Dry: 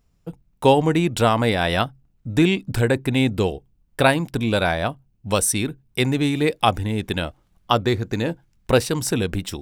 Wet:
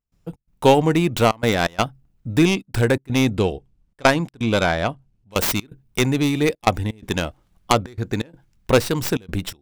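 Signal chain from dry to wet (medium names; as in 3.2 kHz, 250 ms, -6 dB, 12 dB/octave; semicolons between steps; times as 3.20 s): tracing distortion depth 0.22 ms; 3.36–5.32 s: Bessel low-pass 8 kHz, order 2; trance gate ".xx.xxxxxxx" 126 bpm -24 dB; trim +1 dB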